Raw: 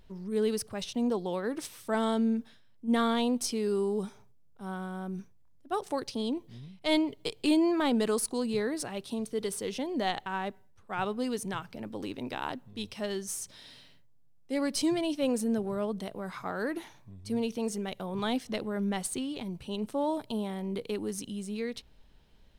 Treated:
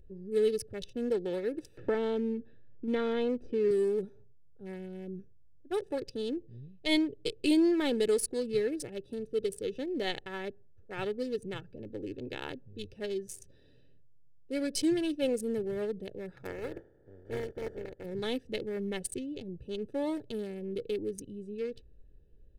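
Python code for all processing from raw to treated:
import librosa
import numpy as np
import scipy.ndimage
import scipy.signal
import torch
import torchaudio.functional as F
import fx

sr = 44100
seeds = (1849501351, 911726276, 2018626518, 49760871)

y = fx.chain(x, sr, fx.lowpass(hz=2300.0, slope=12),
    fx.band_squash(depth_pct=70), at=(1.77, 3.71))
y = fx.spec_flatten(y, sr, power=0.21, at=(16.45, 18.04), fade=0.02)
y = fx.savgol(y, sr, points=41, at=(16.45, 18.04), fade=0.02)
y = fx.peak_eq(y, sr, hz=510.0, db=4.5, octaves=1.8, at=(16.45, 18.04), fade=0.02)
y = fx.wiener(y, sr, points=41)
y = fx.band_shelf(y, sr, hz=1000.0, db=-10.5, octaves=1.0)
y = y + 0.54 * np.pad(y, (int(2.3 * sr / 1000.0), 0))[:len(y)]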